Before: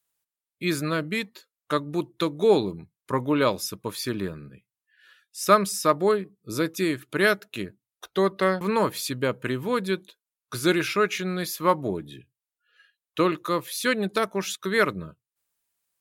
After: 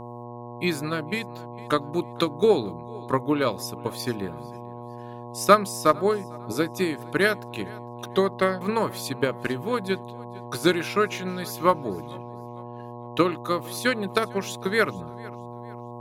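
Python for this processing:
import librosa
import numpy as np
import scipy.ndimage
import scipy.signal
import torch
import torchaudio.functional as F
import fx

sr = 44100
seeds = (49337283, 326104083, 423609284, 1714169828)

p1 = x + fx.echo_feedback(x, sr, ms=453, feedback_pct=34, wet_db=-21, dry=0)
p2 = fx.transient(p1, sr, attack_db=7, sustain_db=0)
p3 = fx.dmg_buzz(p2, sr, base_hz=120.0, harmonics=9, level_db=-35.0, tilt_db=-2, odd_only=False)
p4 = fx.cheby_harmonics(p3, sr, harmonics=(3,), levels_db=(-28,), full_scale_db=0.0)
y = p4 * librosa.db_to_amplitude(-2.5)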